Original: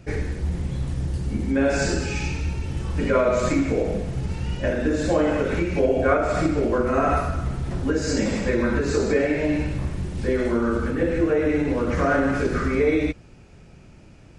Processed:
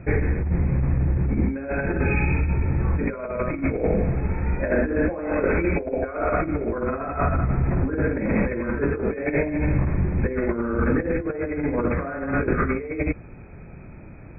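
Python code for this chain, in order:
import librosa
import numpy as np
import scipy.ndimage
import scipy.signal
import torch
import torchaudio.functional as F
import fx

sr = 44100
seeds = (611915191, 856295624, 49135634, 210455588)

y = fx.peak_eq(x, sr, hz=120.0, db=-9.0, octaves=1.0, at=(4.15, 6.45))
y = fx.over_compress(y, sr, threshold_db=-25.0, ratio=-0.5)
y = fx.brickwall_lowpass(y, sr, high_hz=2600.0)
y = y * 10.0 ** (3.0 / 20.0)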